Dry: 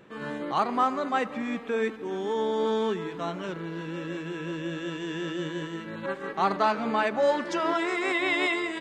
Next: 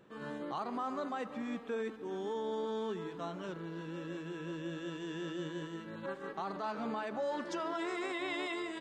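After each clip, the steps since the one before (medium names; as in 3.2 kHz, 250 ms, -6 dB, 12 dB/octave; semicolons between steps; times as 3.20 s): peaking EQ 2.2 kHz -5.5 dB 0.62 oct; peak limiter -21.5 dBFS, peak gain reduction 9 dB; trim -7.5 dB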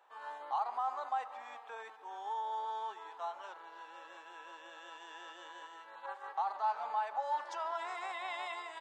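ladder high-pass 760 Hz, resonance 70%; trim +7 dB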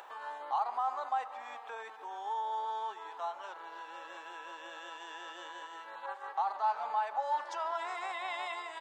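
upward compressor, threshold -43 dBFS; trim +2.5 dB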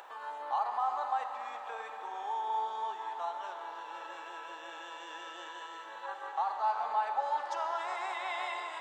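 reverberation RT60 5.3 s, pre-delay 41 ms, DRR 4.5 dB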